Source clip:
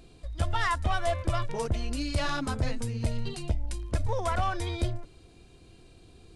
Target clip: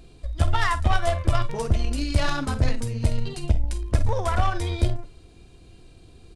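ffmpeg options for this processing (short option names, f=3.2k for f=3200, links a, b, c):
-filter_complex "[0:a]lowshelf=f=100:g=5.5,asplit=2[a][b];[b]adelay=49,volume=-12dB[c];[a][c]amix=inputs=2:normalize=0,aeval=exprs='0.251*(cos(1*acos(clip(val(0)/0.251,-1,1)))-cos(1*PI/2))+0.0158*(cos(3*acos(clip(val(0)/0.251,-1,1)))-cos(3*PI/2))+0.00891*(cos(6*acos(clip(val(0)/0.251,-1,1)))-cos(6*PI/2))+0.00398*(cos(7*acos(clip(val(0)/0.251,-1,1)))-cos(7*PI/2))+0.0112*(cos(8*acos(clip(val(0)/0.251,-1,1)))-cos(8*PI/2))':c=same,volume=5dB"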